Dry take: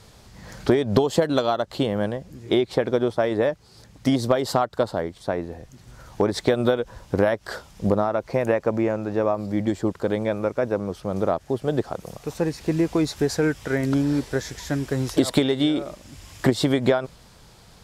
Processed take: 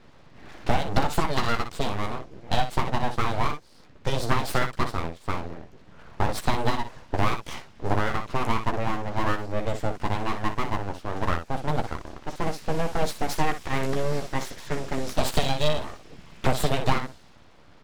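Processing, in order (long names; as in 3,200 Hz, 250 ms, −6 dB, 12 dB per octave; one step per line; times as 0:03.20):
ambience of single reflections 13 ms −5.5 dB, 60 ms −8.5 dB
low-pass that shuts in the quiet parts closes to 2,300 Hz, open at −17.5 dBFS
full-wave rectification
level −1.5 dB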